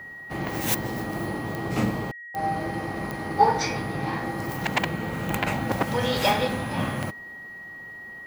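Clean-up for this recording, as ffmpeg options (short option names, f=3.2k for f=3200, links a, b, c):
-af "adeclick=t=4,bandreject=f=1.9k:w=30"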